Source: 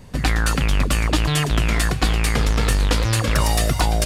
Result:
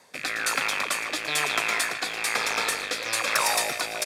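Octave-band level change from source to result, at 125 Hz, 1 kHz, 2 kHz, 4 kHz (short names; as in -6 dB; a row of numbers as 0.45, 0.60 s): -31.5, -3.0, +0.5, -2.5 dB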